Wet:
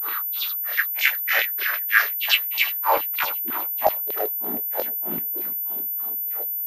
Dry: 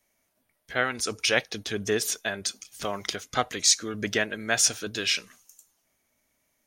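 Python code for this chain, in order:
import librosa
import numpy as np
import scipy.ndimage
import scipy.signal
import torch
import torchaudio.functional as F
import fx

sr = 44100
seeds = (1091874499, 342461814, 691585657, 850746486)

p1 = fx.bin_compress(x, sr, power=0.2)
p2 = fx.notch(p1, sr, hz=1600.0, q=17.0)
p3 = fx.level_steps(p2, sr, step_db=20)
p4 = p2 + F.gain(torch.from_numpy(p3), -2.0).numpy()
p5 = fx.filter_sweep_bandpass(p4, sr, from_hz=1900.0, to_hz=330.0, start_s=2.28, end_s=4.31, q=3.7)
p6 = fx.dispersion(p5, sr, late='highs', ms=76.0, hz=370.0)
p7 = fx.filter_lfo_highpass(p6, sr, shape='saw_down', hz=5.6, low_hz=430.0, high_hz=4200.0, q=3.4)
p8 = fx.doubler(p7, sr, ms=26.0, db=-4.0)
p9 = fx.granulator(p8, sr, seeds[0], grain_ms=238.0, per_s=3.2, spray_ms=100.0, spread_st=12)
p10 = p9 + fx.echo_feedback(p9, sr, ms=341, feedback_pct=36, wet_db=-16, dry=0)
y = fx.pwm(p10, sr, carrier_hz=14000.0)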